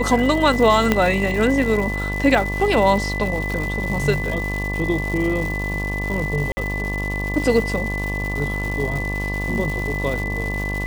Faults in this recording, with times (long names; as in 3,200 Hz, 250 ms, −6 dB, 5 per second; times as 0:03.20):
mains buzz 50 Hz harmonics 23 −26 dBFS
surface crackle 330 per second −26 dBFS
whistle 2,000 Hz −26 dBFS
0:00.92: click −3 dBFS
0:06.52–0:06.57: drop-out 50 ms